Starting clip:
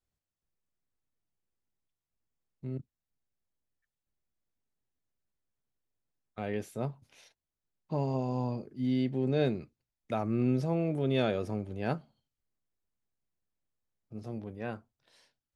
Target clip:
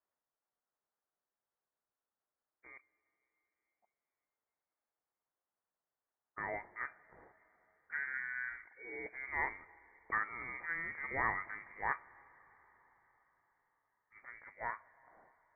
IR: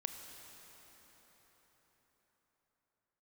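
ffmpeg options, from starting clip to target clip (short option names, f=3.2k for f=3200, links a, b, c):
-filter_complex "[0:a]highpass=1.4k,lowpass=f=2.1k:t=q:w=0.5098,lowpass=f=2.1k:t=q:w=0.6013,lowpass=f=2.1k:t=q:w=0.9,lowpass=f=2.1k:t=q:w=2.563,afreqshift=-2500,asplit=2[a][b];[1:a]atrim=start_sample=2205,asetrate=48510,aresample=44100[c];[b][c]afir=irnorm=-1:irlink=0,volume=-11dB[d];[a][d]amix=inputs=2:normalize=0,volume=7.5dB"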